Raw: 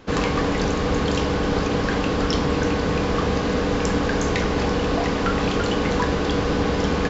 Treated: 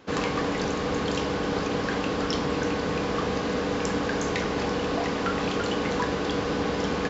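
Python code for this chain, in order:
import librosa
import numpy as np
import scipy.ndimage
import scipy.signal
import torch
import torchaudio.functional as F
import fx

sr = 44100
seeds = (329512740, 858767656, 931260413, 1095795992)

y = fx.highpass(x, sr, hz=160.0, slope=6)
y = y * 10.0 ** (-4.0 / 20.0)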